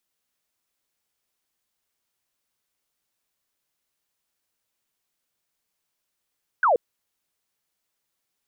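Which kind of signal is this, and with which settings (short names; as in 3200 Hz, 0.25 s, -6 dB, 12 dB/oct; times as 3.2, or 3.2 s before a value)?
laser zap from 1600 Hz, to 440 Hz, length 0.13 s sine, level -15.5 dB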